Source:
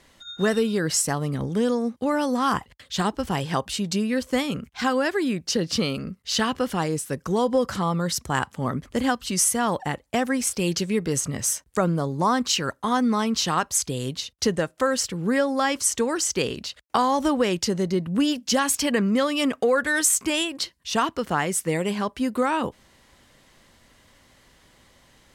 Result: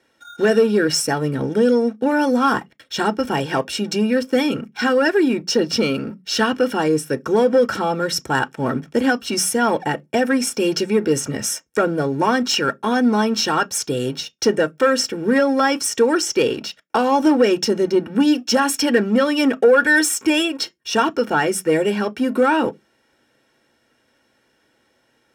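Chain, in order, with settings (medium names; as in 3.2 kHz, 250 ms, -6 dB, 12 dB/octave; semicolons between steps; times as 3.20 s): waveshaping leveller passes 2; comb of notches 1 kHz; reverberation RT60 0.15 s, pre-delay 3 ms, DRR 12 dB; trim -5.5 dB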